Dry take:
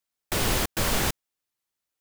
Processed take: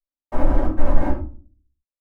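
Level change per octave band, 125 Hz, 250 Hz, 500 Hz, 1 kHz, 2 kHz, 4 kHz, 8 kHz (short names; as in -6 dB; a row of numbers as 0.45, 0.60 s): +5.0 dB, +7.0 dB, +4.5 dB, +1.5 dB, -8.5 dB, under -20 dB, under -30 dB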